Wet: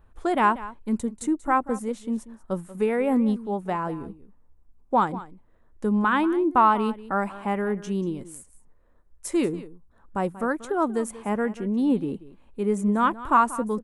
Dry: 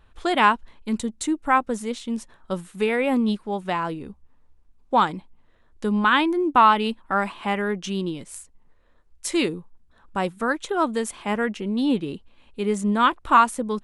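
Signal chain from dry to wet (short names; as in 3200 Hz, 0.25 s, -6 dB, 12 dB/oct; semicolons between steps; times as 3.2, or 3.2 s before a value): bell 3600 Hz -14 dB 1.9 oct; on a send: echo 0.186 s -16.5 dB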